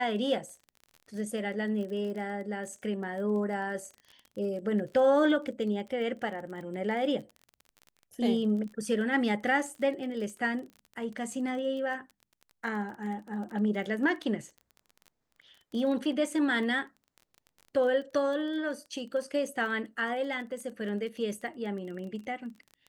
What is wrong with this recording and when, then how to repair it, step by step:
surface crackle 27 per second −39 dBFS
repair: click removal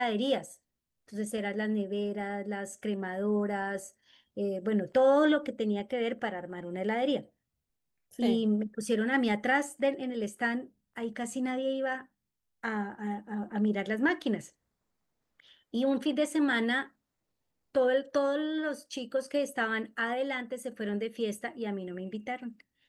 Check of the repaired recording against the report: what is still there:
none of them is left

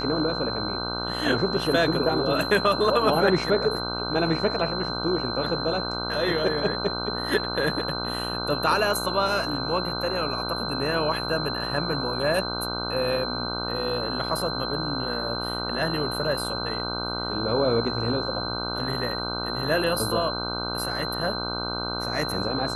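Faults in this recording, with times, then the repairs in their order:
mains buzz 60 Hz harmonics 26 −32 dBFS
whistle 4,100 Hz −31 dBFS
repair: hum removal 60 Hz, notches 26
notch filter 4,100 Hz, Q 30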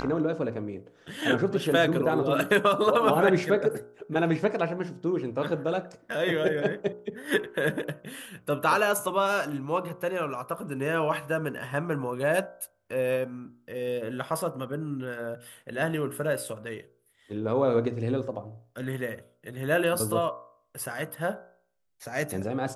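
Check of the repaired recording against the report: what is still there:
none of them is left

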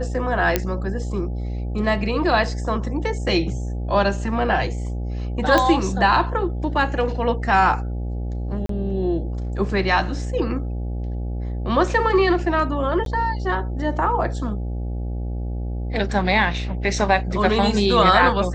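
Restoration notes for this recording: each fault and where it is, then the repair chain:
mains buzz 60 Hz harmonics 14 −26 dBFS
0:00.56: click −3 dBFS
0:05.58: click −5 dBFS
0:08.66–0:08.69: drop-out 33 ms
0:13.05–0:13.06: drop-out 12 ms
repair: click removal
hum removal 60 Hz, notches 14
repair the gap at 0:08.66, 33 ms
repair the gap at 0:13.05, 12 ms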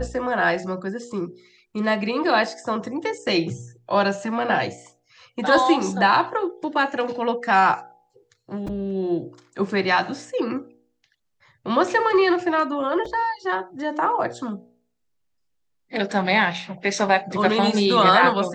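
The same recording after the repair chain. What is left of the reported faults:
none of them is left

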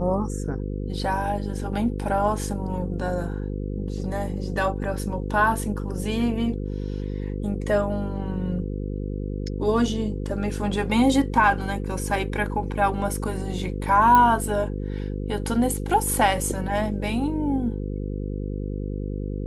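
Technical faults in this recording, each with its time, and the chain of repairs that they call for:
mains buzz 50 Hz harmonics 10 −29 dBFS
0:14.15: click −7 dBFS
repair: click removal
hum removal 50 Hz, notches 10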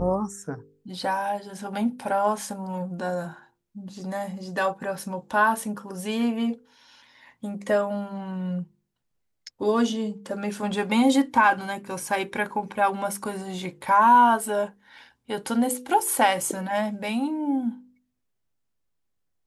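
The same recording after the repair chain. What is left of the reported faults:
none of them is left

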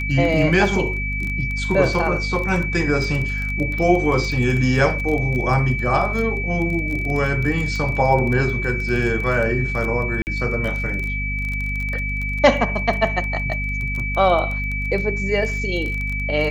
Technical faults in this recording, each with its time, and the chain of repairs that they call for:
surface crackle 20 per second −24 dBFS
mains hum 50 Hz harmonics 5 −26 dBFS
whistle 2,300 Hz −25 dBFS
0:10.22–0:10.27: drop-out 49 ms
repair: click removal
hum removal 50 Hz, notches 5
notch filter 2,300 Hz, Q 30
repair the gap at 0:10.22, 49 ms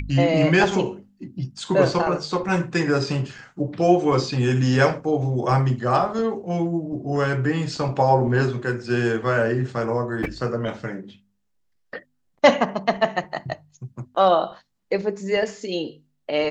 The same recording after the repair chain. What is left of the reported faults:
none of them is left

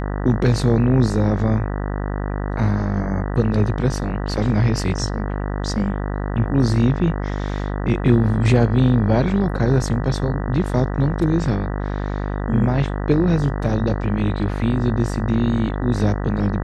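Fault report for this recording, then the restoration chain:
mains buzz 50 Hz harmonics 39 −24 dBFS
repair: hum removal 50 Hz, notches 39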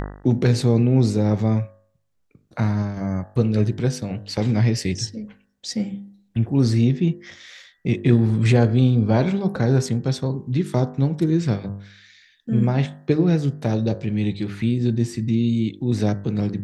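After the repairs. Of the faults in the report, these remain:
none of them is left

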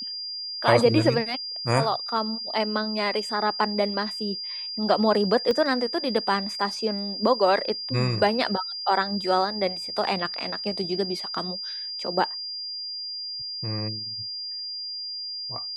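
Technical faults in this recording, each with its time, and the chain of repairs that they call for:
whistle 4,800 Hz −31 dBFS
0:05.51: click −14 dBFS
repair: click removal
notch filter 4,800 Hz, Q 30

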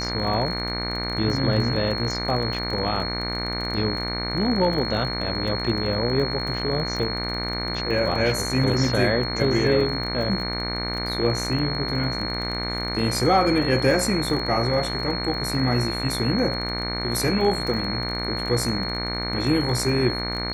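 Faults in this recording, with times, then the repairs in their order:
mains buzz 60 Hz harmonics 39 −30 dBFS
surface crackle 21 per second −29 dBFS
whistle 4,300 Hz −29 dBFS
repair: click removal
hum removal 60 Hz, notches 39
notch filter 4,300 Hz, Q 30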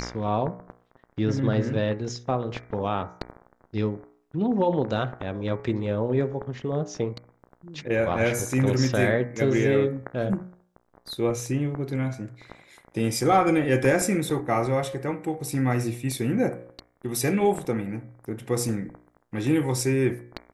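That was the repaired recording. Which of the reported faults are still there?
none of them is left

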